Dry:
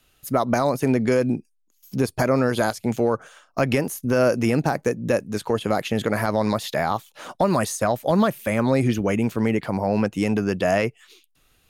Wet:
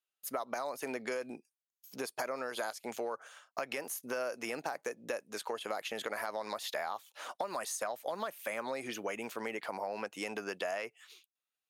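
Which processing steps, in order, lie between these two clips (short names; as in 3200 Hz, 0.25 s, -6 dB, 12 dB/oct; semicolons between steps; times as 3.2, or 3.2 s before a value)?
gate -55 dBFS, range -24 dB; HPF 600 Hz 12 dB/oct; compressor, threshold -28 dBFS, peak gain reduction 10 dB; gain -5.5 dB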